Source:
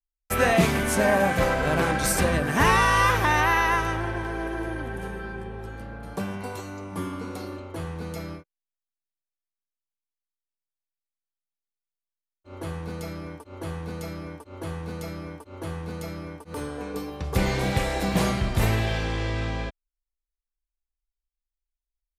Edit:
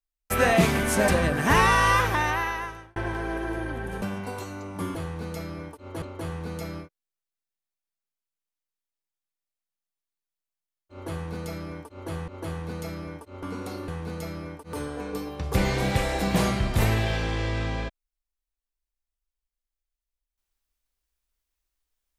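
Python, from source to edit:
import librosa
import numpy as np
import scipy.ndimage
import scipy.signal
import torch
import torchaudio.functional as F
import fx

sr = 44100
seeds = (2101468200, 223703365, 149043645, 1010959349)

y = fx.edit(x, sr, fx.cut(start_s=1.08, length_s=1.1),
    fx.fade_out_span(start_s=2.96, length_s=1.1),
    fx.cut(start_s=5.12, length_s=1.07),
    fx.swap(start_s=7.12, length_s=0.45, other_s=14.62, other_length_s=1.07),
    fx.repeat(start_s=13.47, length_s=0.36, count=2), tone=tone)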